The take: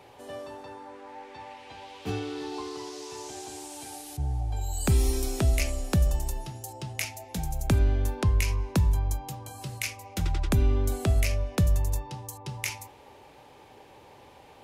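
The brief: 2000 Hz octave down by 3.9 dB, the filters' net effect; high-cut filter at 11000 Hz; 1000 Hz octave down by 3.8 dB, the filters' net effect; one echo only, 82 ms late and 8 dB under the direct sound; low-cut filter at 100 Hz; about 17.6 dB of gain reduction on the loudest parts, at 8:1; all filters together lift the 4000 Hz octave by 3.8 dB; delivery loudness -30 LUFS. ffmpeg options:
-af "highpass=100,lowpass=11k,equalizer=f=1k:t=o:g=-4,equalizer=f=2k:t=o:g=-6.5,equalizer=f=4k:t=o:g=7,acompressor=threshold=-40dB:ratio=8,aecho=1:1:82:0.398,volume=13.5dB"

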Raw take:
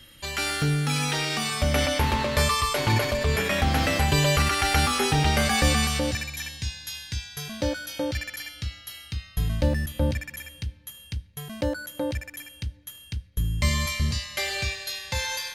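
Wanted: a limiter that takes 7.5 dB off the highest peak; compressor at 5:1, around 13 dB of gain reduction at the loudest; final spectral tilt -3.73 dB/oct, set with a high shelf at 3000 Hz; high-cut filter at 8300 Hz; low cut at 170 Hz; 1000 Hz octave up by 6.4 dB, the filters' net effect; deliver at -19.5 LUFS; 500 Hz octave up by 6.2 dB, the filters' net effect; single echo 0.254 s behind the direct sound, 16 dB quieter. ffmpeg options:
-af "highpass=170,lowpass=8.3k,equalizer=f=500:t=o:g=5.5,equalizer=f=1k:t=o:g=7,highshelf=f=3k:g=-3.5,acompressor=threshold=-32dB:ratio=5,alimiter=level_in=1.5dB:limit=-24dB:level=0:latency=1,volume=-1.5dB,aecho=1:1:254:0.158,volume=16.5dB"

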